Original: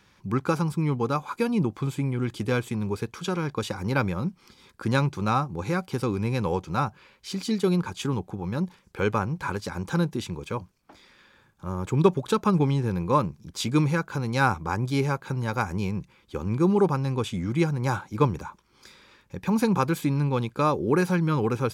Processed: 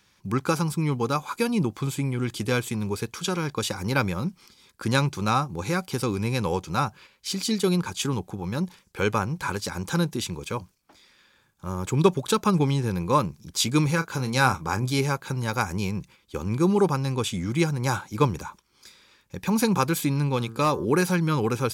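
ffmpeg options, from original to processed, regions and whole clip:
-filter_complex "[0:a]asettb=1/sr,asplit=3[a][b][c];[a]atrim=end=13.864[d];[b]atrim=start=13.86:end=14.99,asetpts=PTS-STARTPTS,afade=t=in:d=0.004:c=qsin,afade=t=out:st=1.126:d=0.004:c=qsin,highpass=43,asplit=2[e][f];[f]adelay=31,volume=-11dB[g];[e][g]amix=inputs=2:normalize=0,atrim=end_sample=49833[h];[c]atrim=start=14.986[i];[d][h]acrossfade=d=0.004:c1=hsin:c2=qsin[j];[j][i]acrossfade=d=0.004:c1=qsin:c2=hsin,asettb=1/sr,asplit=3[k][l][m];[k]atrim=end=20.364[n];[l]atrim=start=20.36:end=20.85,asetpts=PTS-STARTPTS,afade=t=in:d=0.004:c=qsin,afade=t=out:st=0.486:d=0.004:c=qsin,bandreject=f=1.4k:w=12,bandreject=f=113.3:t=h:w=4,bandreject=f=226.6:t=h:w=4,bandreject=f=339.9:t=h:w=4,bandreject=f=453.2:t=h:w=4,bandreject=f=566.5:t=h:w=4,bandreject=f=679.8:t=h:w=4,bandreject=f=793.1:t=h:w=4,bandreject=f=906.4:t=h:w=4,bandreject=f=1.0197k:t=h:w=4,bandreject=f=1.133k:t=h:w=4,bandreject=f=1.2463k:t=h:w=4,bandreject=f=1.3596k:t=h:w=4,bandreject=f=1.4729k:t=h:w=4,bandreject=f=1.5862k:t=h:w=4,bandreject=f=1.6995k:t=h:w=4,volume=15.5dB,asoftclip=hard,volume=-15.5dB[o];[m]atrim=start=20.846[p];[n][o]acrossfade=d=0.004:c1=hsin:c2=qsin[q];[q][p]acrossfade=d=0.004:c1=qsin:c2=hsin,agate=range=-6dB:threshold=-48dB:ratio=16:detection=peak,highshelf=f=3.2k:g=10.5"

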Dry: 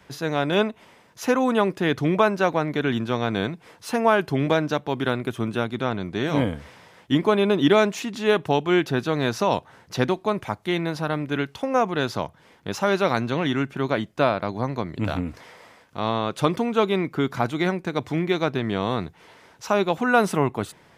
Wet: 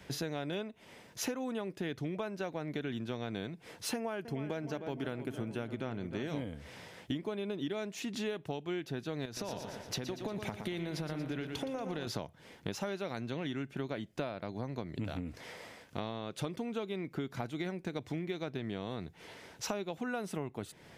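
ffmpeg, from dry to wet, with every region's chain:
-filter_complex "[0:a]asettb=1/sr,asplit=3[a][b][c];[a]atrim=end=3.944[d];[b]atrim=start=3.94:end=6.28,asetpts=PTS-STARTPTS,afade=t=in:d=0.004:c=qsin,afade=t=out:st=2.336:d=0.004:c=qsin,bandreject=f=3.7k:w=6.3,asplit=2[e][f];[f]adelay=308,lowpass=f=2.2k:p=1,volume=-12dB,asplit=2[g][h];[h]adelay=308,lowpass=f=2.2k:p=1,volume=0.55,asplit=2[i][j];[j]adelay=308,lowpass=f=2.2k:p=1,volume=0.55,asplit=2[k][l];[l]adelay=308,lowpass=f=2.2k:p=1,volume=0.55,asplit=2[m][n];[n]adelay=308,lowpass=f=2.2k:p=1,volume=0.55,asplit=2[o][p];[p]adelay=308,lowpass=f=2.2k:p=1,volume=0.55[q];[e][g][i][k][m][o][q]amix=inputs=7:normalize=0,atrim=end_sample=103194[r];[c]atrim=start=6.276[s];[d][r]acrossfade=d=0.004:c1=hsin:c2=qsin[t];[t][s]acrossfade=d=0.004:c1=qsin:c2=hsin,asettb=1/sr,asplit=3[u][v][w];[u]atrim=end=9.254[x];[v]atrim=start=9.25:end=12.07,asetpts=PTS-STARTPTS,afade=t=in:d=0.004:c=qsin,afade=t=out:st=2.816:d=0.004:c=qsin,acompressor=threshold=-27dB:ratio=10:attack=3.2:release=140:knee=1:detection=peak,aecho=1:1:117|234|351|468|585|702|819:0.355|0.199|0.111|0.0623|0.0349|0.0195|0.0109,atrim=end_sample=124362[y];[w]atrim=start=12.066[z];[x][y]acrossfade=d=0.004:c1=hsin:c2=qsin[aa];[aa][z]acrossfade=d=0.004:c1=qsin:c2=hsin,equalizer=f=1.1k:t=o:w=0.95:g=-7,acompressor=threshold=-35dB:ratio=12,volume=1dB"

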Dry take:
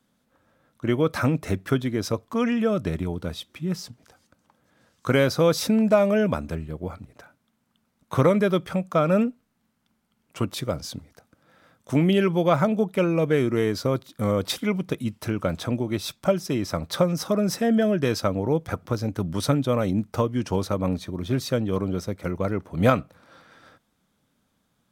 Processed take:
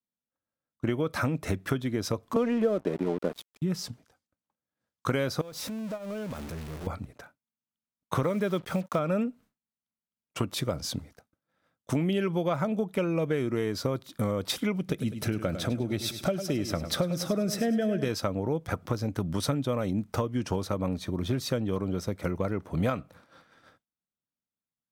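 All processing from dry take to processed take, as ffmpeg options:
-filter_complex "[0:a]asettb=1/sr,asplit=3[a][b][c];[a]atrim=end=2.364[d];[b]atrim=start=2.36:end=3.62,asetpts=PTS-STARTPTS,afade=t=in:d=0.004:c=qsin,afade=t=out:st=1.256:d=0.004:c=qsin,highpass=f=160:w=0.5412,highpass=f=160:w=1.3066,equalizer=f=470:w=0.58:g=13,aeval=exprs='sgn(val(0))*max(abs(val(0))-0.02,0)':c=same[e];[c]atrim=start=3.616[f];[d][e]acrossfade=d=0.004:c1=hsin:c2=qsin[g];[g][f]acrossfade=d=0.004:c1=qsin:c2=hsin,asettb=1/sr,asplit=3[h][i][j];[h]atrim=end=5.414[k];[i]atrim=start=5.41:end=6.87,asetpts=PTS-STARTPTS,afade=t=in:d=0.004:c=qsin,afade=t=out:st=1.456:d=0.004:c=qsin,aeval=exprs='val(0)+0.5*0.075*sgn(val(0))':c=same,agate=range=-16dB:threshold=-14dB:ratio=16:release=100:detection=peak,acompressor=threshold=-35dB:ratio=10:attack=3.2:release=140:knee=1:detection=peak[l];[j]atrim=start=6.866[m];[k][l]acrossfade=d=0.004:c1=hsin:c2=qsin[n];[n][m]acrossfade=d=0.004:c1=qsin:c2=hsin,asettb=1/sr,asplit=3[o][p][q];[o]atrim=end=8.234[r];[p]atrim=start=8.23:end=8.99,asetpts=PTS-STARTPTS,afade=t=in:d=0.004:c=qsin,afade=t=out:st=0.756:d=0.004:c=qsin,equalizer=f=86:t=o:w=0.22:g=-5,acrusher=bits=6:mix=0:aa=0.5,highpass=57[s];[q]atrim=start=8.986[t];[r][s]acrossfade=d=0.004:c1=hsin:c2=qsin[u];[u][t]acrossfade=d=0.004:c1=qsin:c2=hsin,asettb=1/sr,asplit=3[v][w][x];[v]atrim=end=14.794[y];[w]atrim=start=14.79:end=18.1,asetpts=PTS-STARTPTS,afade=t=in:d=0.004:c=qsin,afade=t=out:st=3.306:d=0.004:c=qsin,equalizer=f=1k:w=3.1:g=-8.5,aecho=1:1:101|202|303|404|505:0.251|0.113|0.0509|0.0229|0.0103,atrim=end_sample=145971[z];[x]atrim=start=18.096[aa];[y][z]acrossfade=d=0.004:c1=hsin:c2=qsin[ab];[ab][aa]acrossfade=d=0.004:c1=qsin:c2=hsin,agate=range=-33dB:threshold=-44dB:ratio=3:detection=peak,acompressor=threshold=-29dB:ratio=4,volume=3dB"

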